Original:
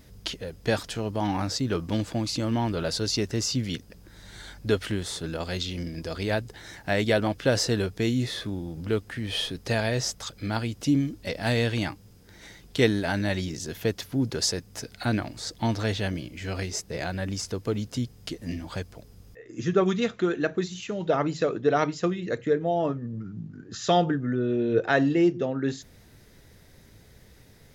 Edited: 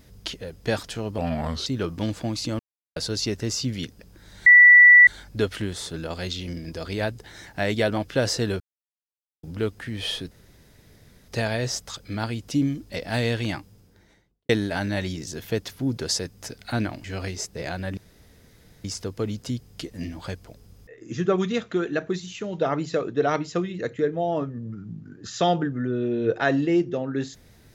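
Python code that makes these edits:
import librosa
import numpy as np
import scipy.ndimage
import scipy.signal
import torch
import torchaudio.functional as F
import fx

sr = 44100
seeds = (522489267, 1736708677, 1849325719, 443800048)

y = fx.studio_fade_out(x, sr, start_s=11.91, length_s=0.91)
y = fx.edit(y, sr, fx.speed_span(start_s=1.18, length_s=0.39, speed=0.81),
    fx.silence(start_s=2.5, length_s=0.37),
    fx.insert_tone(at_s=4.37, length_s=0.61, hz=1960.0, db=-7.5),
    fx.silence(start_s=7.9, length_s=0.83),
    fx.insert_room_tone(at_s=9.61, length_s=0.97),
    fx.cut(start_s=15.37, length_s=1.02),
    fx.insert_room_tone(at_s=17.32, length_s=0.87), tone=tone)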